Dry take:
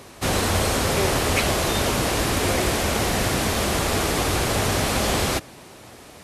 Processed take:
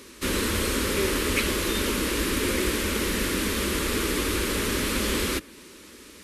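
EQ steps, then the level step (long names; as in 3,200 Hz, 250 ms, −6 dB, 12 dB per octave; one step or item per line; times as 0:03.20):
dynamic equaliser 6,000 Hz, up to −5 dB, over −41 dBFS, Q 0.9
phaser with its sweep stopped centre 300 Hz, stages 4
0.0 dB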